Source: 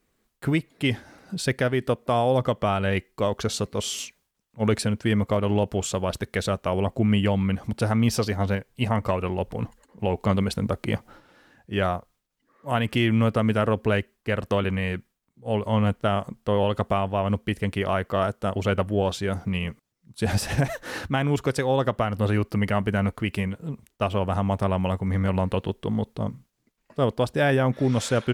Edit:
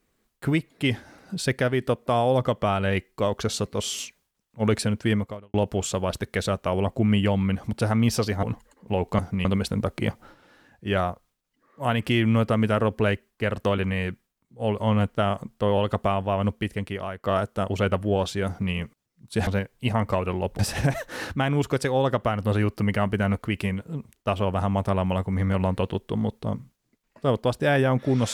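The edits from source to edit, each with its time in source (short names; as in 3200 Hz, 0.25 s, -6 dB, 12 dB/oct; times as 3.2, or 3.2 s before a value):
5.13–5.54 fade out quadratic
8.43–9.55 move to 20.33
17.36–18.1 fade out, to -13 dB
19.33–19.59 copy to 10.31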